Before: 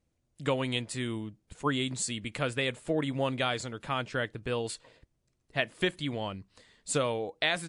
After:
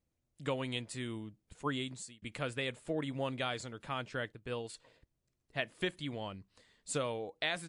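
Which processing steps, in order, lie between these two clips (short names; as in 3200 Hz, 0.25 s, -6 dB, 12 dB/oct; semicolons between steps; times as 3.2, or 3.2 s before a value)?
1.78–2.22 fade out; 4.32–4.74 upward expander 1.5:1, over -49 dBFS; gain -6.5 dB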